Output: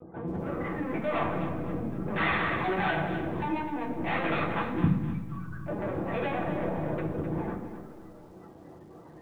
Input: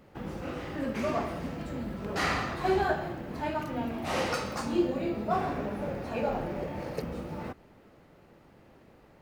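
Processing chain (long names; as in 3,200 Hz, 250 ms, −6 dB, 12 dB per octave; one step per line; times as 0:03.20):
gate on every frequency bin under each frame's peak −15 dB strong
dynamic equaliser 390 Hz, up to −7 dB, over −49 dBFS, Q 7.2
0:04.82–0:05.68: elliptic band-stop filter 130–1,800 Hz, stop band 60 dB
in parallel at −7.5 dB: dead-zone distortion −43 dBFS
0:03.46–0:04.15: on the sum: phaser with its sweep stopped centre 840 Hz, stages 8
soft clipping −35 dBFS, distortion −5 dB
linear-prediction vocoder at 8 kHz pitch kept
convolution reverb RT60 0.65 s, pre-delay 6 ms, DRR −1.5 dB
feedback echo at a low word length 257 ms, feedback 35%, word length 11 bits, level −10 dB
level +8 dB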